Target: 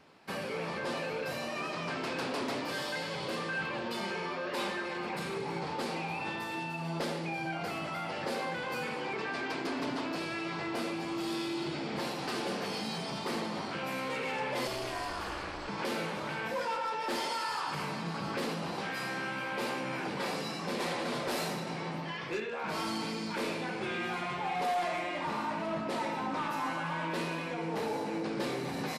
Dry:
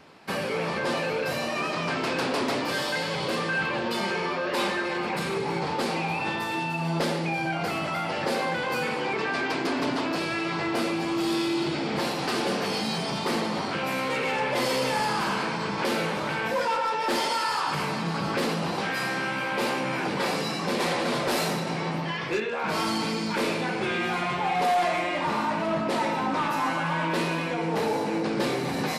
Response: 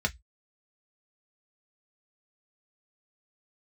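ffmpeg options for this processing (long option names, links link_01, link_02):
-filter_complex "[0:a]asettb=1/sr,asplit=3[link_01][link_02][link_03];[link_01]atrim=end=14.674[link_04];[link_02]atrim=start=14.67:end=15.68,asetpts=PTS-STARTPTS,afade=type=in:duration=0.004:curve=qsin,afade=type=out:start_time=1.006:duration=0.004:curve=qsin,aeval=exprs='val(0)*sin(2*PI*140*n/s)':channel_layout=same[link_05];[link_03]atrim=start=15.676[link_06];[link_04][link_05]acrossfade=duration=0.004:curve1=hsin:curve2=qsin[link_07];[link_07][link_06]acrossfade=duration=0.004:curve1=qsin:curve2=hsin,asplit=2[link_08][link_09];[link_09]aecho=0:1:76:0.141[link_10];[link_08][link_10]amix=inputs=2:normalize=0,volume=-8dB"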